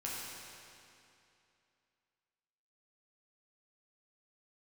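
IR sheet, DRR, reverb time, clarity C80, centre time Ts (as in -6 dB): -6.5 dB, 2.7 s, -1.0 dB, 158 ms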